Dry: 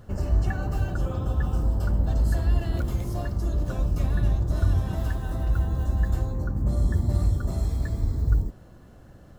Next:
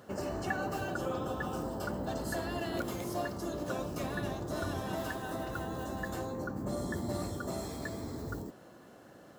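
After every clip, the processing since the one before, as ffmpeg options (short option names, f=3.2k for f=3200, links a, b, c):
-af "highpass=280,volume=1.5dB"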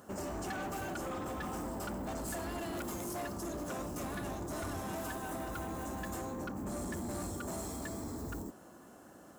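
-af "equalizer=f=125:t=o:w=1:g=-9,equalizer=f=500:t=o:w=1:g=-7,equalizer=f=2k:t=o:w=1:g=-6,equalizer=f=4k:t=o:w=1:g=-9,equalizer=f=8k:t=o:w=1:g=4,asoftclip=type=hard:threshold=-40dB,volume=4dB"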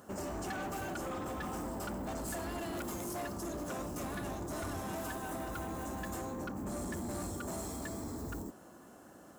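-af anull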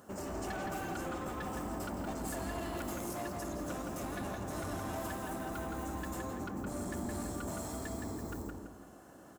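-filter_complex "[0:a]asplit=2[a][b];[b]adelay=167,lowpass=f=3.6k:p=1,volume=-3dB,asplit=2[c][d];[d]adelay=167,lowpass=f=3.6k:p=1,volume=0.4,asplit=2[e][f];[f]adelay=167,lowpass=f=3.6k:p=1,volume=0.4,asplit=2[g][h];[h]adelay=167,lowpass=f=3.6k:p=1,volume=0.4,asplit=2[i][j];[j]adelay=167,lowpass=f=3.6k:p=1,volume=0.4[k];[a][c][e][g][i][k]amix=inputs=6:normalize=0,volume=-1.5dB"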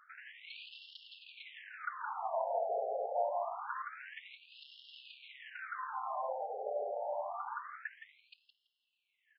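-af "adynamicsmooth=sensitivity=6:basefreq=1k,afftfilt=real='re*between(b*sr/1024,580*pow(3900/580,0.5+0.5*sin(2*PI*0.26*pts/sr))/1.41,580*pow(3900/580,0.5+0.5*sin(2*PI*0.26*pts/sr))*1.41)':imag='im*between(b*sr/1024,580*pow(3900/580,0.5+0.5*sin(2*PI*0.26*pts/sr))/1.41,580*pow(3900/580,0.5+0.5*sin(2*PI*0.26*pts/sr))*1.41)':win_size=1024:overlap=0.75,volume=10.5dB"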